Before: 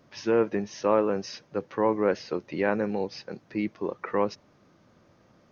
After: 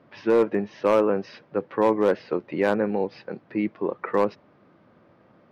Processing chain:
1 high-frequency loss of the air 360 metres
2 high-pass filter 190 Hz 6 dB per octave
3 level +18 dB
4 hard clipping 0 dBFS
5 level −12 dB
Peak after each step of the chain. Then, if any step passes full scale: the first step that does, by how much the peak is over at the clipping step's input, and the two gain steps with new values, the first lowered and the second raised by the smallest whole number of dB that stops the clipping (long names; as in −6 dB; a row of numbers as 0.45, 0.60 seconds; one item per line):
−11.5, −12.0, +6.0, 0.0, −12.0 dBFS
step 3, 6.0 dB
step 3 +12 dB, step 5 −6 dB